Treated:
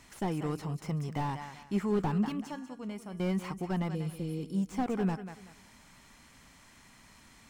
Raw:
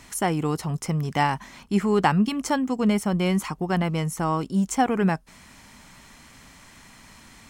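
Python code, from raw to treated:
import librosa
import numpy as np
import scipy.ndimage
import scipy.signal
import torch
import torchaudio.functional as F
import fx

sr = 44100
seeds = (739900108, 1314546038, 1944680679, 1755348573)

p1 = fx.comb_fb(x, sr, f0_hz=130.0, decay_s=0.94, harmonics='odd', damping=0.0, mix_pct=70, at=(2.42, 3.2))
p2 = fx.spec_repair(p1, sr, seeds[0], start_s=3.93, length_s=0.48, low_hz=580.0, high_hz=8700.0, source='after')
p3 = p2 + fx.echo_feedback(p2, sr, ms=190, feedback_pct=28, wet_db=-13.5, dry=0)
p4 = fx.slew_limit(p3, sr, full_power_hz=58.0)
y = p4 * 10.0 ** (-8.5 / 20.0)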